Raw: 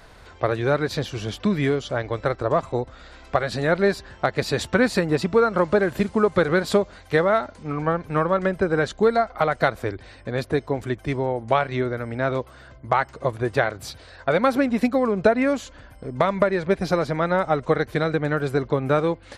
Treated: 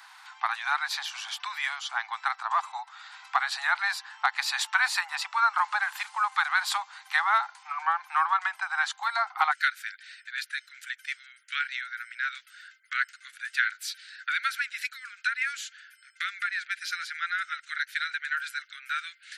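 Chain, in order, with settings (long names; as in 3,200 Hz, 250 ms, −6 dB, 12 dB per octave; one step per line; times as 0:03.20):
Butterworth high-pass 790 Hz 96 dB per octave, from 0:09.51 1,400 Hz
level +1.5 dB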